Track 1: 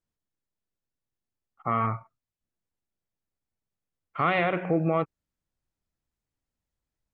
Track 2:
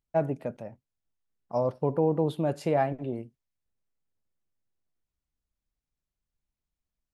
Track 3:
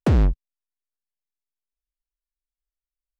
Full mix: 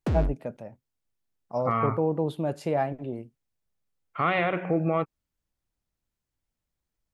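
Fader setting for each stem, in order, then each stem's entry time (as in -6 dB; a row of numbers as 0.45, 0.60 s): -0.5, -1.0, -8.5 dB; 0.00, 0.00, 0.00 s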